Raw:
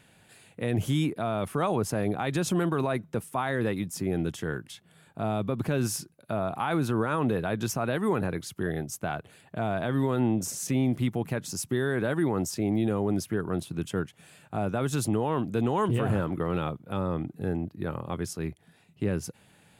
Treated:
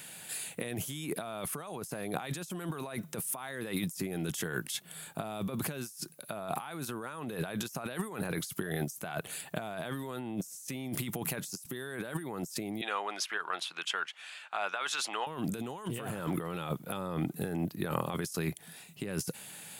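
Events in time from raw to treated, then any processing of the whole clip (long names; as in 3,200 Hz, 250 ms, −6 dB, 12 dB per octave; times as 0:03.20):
0:12.81–0:15.27: flat-topped band-pass 1,900 Hz, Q 0.65
whole clip: RIAA equalisation recording; compressor whose output falls as the input rises −39 dBFS, ratio −1; parametric band 160 Hz +6.5 dB 0.79 octaves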